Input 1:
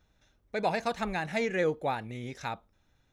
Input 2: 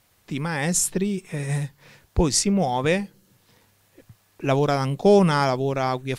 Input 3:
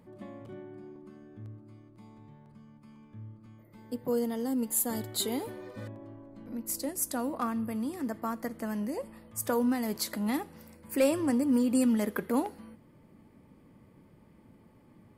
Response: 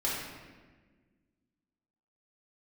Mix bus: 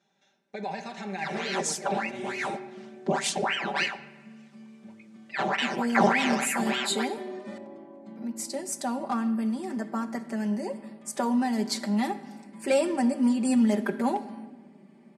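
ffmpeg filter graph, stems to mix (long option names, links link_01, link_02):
-filter_complex "[0:a]alimiter=level_in=4.5dB:limit=-24dB:level=0:latency=1,volume=-4.5dB,volume=-3dB,asplit=2[link_01][link_02];[link_02]volume=-12dB[link_03];[1:a]aeval=exprs='val(0)*sin(2*PI*1300*n/s+1300*0.85/3.4*sin(2*PI*3.4*n/s))':channel_layout=same,adelay=900,volume=-7dB,asplit=2[link_04][link_05];[link_05]volume=-20dB[link_06];[2:a]adelay=1700,volume=0.5dB,asplit=2[link_07][link_08];[link_08]volume=-18.5dB[link_09];[3:a]atrim=start_sample=2205[link_10];[link_03][link_06][link_09]amix=inputs=3:normalize=0[link_11];[link_11][link_10]afir=irnorm=-1:irlink=0[link_12];[link_01][link_04][link_07][link_12]amix=inputs=4:normalize=0,highpass=frequency=170:width=0.5412,highpass=frequency=170:width=1.3066,equalizer=frequency=480:width_type=q:width=4:gain=-4,equalizer=frequency=740:width_type=q:width=4:gain=5,equalizer=frequency=1200:width_type=q:width=4:gain=-5,lowpass=frequency=8700:width=0.5412,lowpass=frequency=8700:width=1.3066,aecho=1:1:5.1:0.84"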